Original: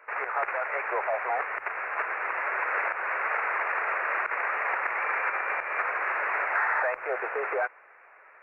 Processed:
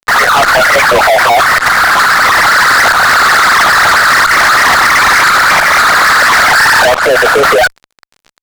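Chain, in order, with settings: formant sharpening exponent 3; fuzz box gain 39 dB, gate -46 dBFS; gain +8 dB

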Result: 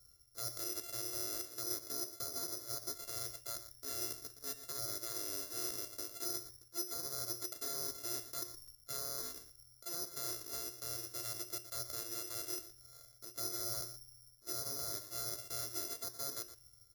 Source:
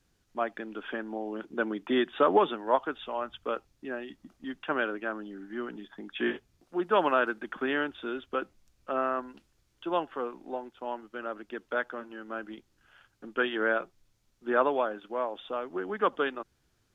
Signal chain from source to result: sample sorter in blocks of 64 samples; treble ducked by the level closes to 1300 Hz, closed at -24.5 dBFS; bell 90 Hz +8.5 dB 2.5 oct; reverse; compressor 8:1, threshold -38 dBFS, peak gain reduction 20.5 dB; reverse; fixed phaser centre 790 Hz, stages 6; limiter -37.5 dBFS, peak gain reduction 7.5 dB; resonator 120 Hz, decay 0.48 s, harmonics odd, mix 70%; on a send: echo 0.118 s -12 dB; on the sum: careless resampling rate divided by 8×, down none, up zero stuff; gain +6 dB

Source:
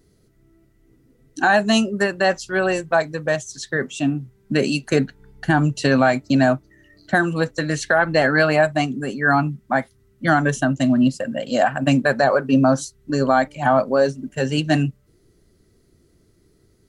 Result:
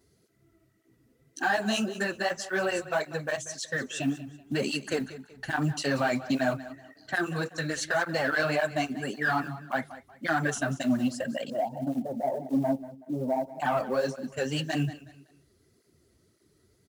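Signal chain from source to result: HPF 55 Hz 12 dB/oct; low shelf 480 Hz -5.5 dB; in parallel at +2 dB: limiter -16.5 dBFS, peak gain reduction 10 dB; 11.5–13.6 on the sum: rippled Chebyshev low-pass 930 Hz, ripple 6 dB; soft clip -8 dBFS, distortion -18 dB; short-mantissa float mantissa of 4-bit; feedback echo 0.187 s, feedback 32%, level -15.5 dB; tape flanging out of phase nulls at 1.8 Hz, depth 7.1 ms; gain -7.5 dB

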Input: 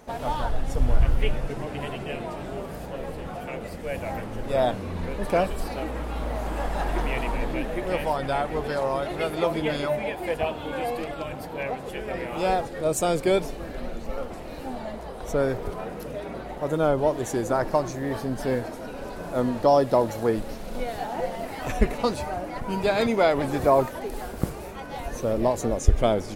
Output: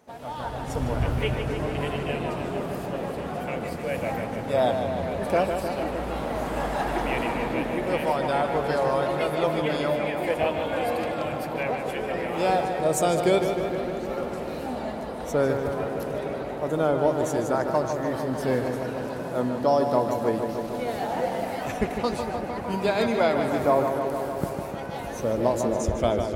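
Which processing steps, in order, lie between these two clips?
HPF 89 Hz 12 dB/oct; AGC gain up to 11 dB; on a send: darkening echo 0.152 s, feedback 79%, low-pass 4100 Hz, level -6.5 dB; on the sum: gain -9 dB

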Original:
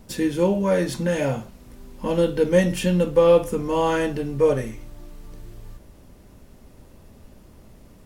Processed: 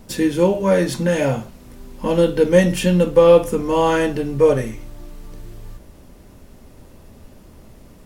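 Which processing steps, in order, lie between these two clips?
notches 50/100/150/200 Hz; gain +4.5 dB

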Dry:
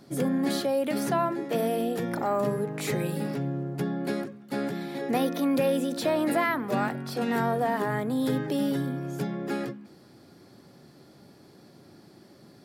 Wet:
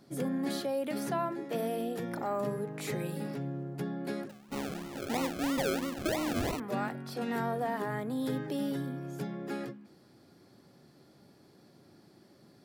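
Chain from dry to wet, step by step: 4.29–6.6 decimation with a swept rate 37×, swing 60% 3 Hz; gain -6.5 dB

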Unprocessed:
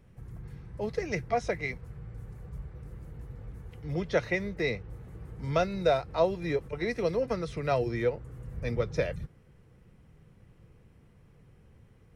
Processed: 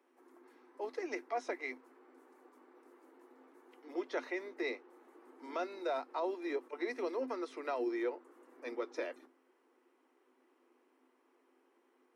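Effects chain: octaver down 2 oct, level -3 dB; rippled Chebyshev high-pass 250 Hz, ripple 9 dB; limiter -27 dBFS, peak gain reduction 8.5 dB

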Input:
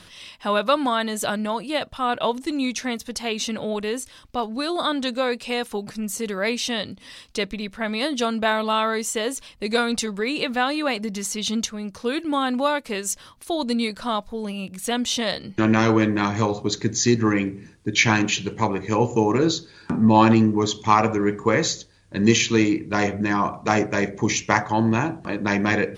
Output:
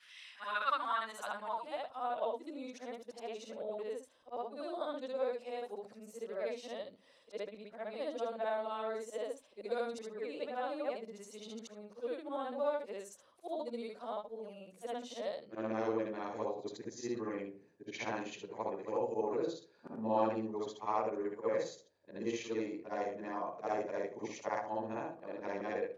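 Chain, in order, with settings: short-time reversal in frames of 0.163 s; band-pass sweep 1900 Hz -> 560 Hz, 0.13–2.36; pre-emphasis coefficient 0.8; gain +7.5 dB

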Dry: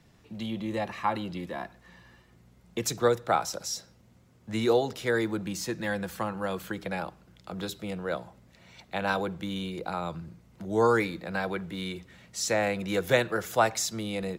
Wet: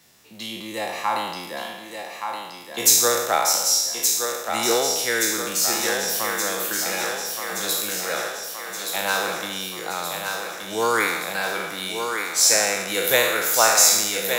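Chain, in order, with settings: spectral trails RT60 1.02 s; RIAA curve recording; thinning echo 1.173 s, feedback 65%, high-pass 250 Hz, level -5.5 dB; gain +2 dB

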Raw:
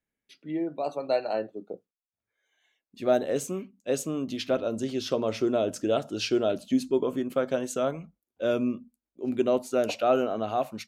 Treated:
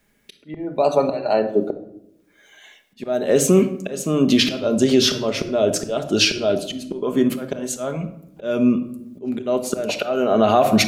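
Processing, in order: compressor 2:1, threshold -31 dBFS, peak gain reduction 8 dB; auto swell 0.741 s; shoebox room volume 2200 m³, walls furnished, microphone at 1.3 m; maximiser +27.5 dB; gain -4 dB

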